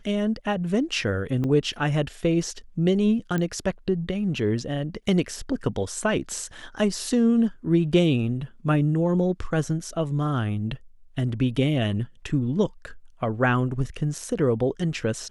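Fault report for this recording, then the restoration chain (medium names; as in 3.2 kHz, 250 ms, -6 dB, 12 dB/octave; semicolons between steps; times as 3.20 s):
1.44 s: dropout 3.9 ms
3.38 s: pop -15 dBFS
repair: de-click; interpolate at 1.44 s, 3.9 ms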